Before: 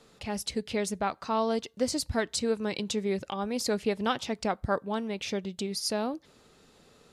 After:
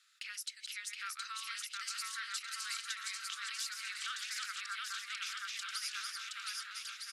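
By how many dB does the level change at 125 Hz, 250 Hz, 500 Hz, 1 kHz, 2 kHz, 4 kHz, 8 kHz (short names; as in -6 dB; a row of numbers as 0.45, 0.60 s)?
under -40 dB, under -40 dB, under -40 dB, -12.5 dB, -1.0 dB, -2.5 dB, -3.0 dB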